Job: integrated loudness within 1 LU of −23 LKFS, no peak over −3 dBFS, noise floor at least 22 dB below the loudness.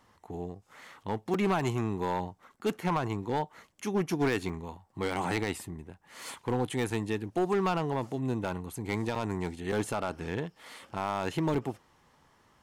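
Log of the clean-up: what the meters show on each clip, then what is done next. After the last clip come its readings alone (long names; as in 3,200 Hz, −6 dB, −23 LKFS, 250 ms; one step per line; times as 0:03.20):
share of clipped samples 1.3%; peaks flattened at −22.0 dBFS; number of dropouts 6; longest dropout 4.2 ms; integrated loudness −32.5 LKFS; sample peak −22.0 dBFS; target loudness −23.0 LKFS
→ clipped peaks rebuilt −22 dBFS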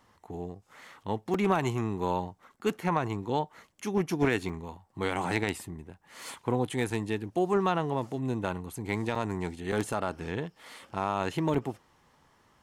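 share of clipped samples 0.0%; number of dropouts 6; longest dropout 4.2 ms
→ repair the gap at 0:01.34/0:04.49/0:06.90/0:09.15/0:09.72/0:11.54, 4.2 ms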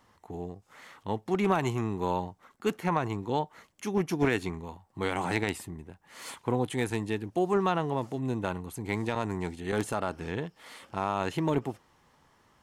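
number of dropouts 0; integrated loudness −31.5 LKFS; sample peak −13.0 dBFS; target loudness −23.0 LKFS
→ level +8.5 dB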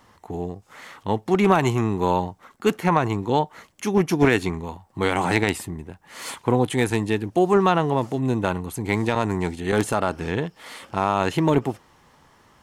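integrated loudness −23.0 LKFS; sample peak −4.5 dBFS; background noise floor −57 dBFS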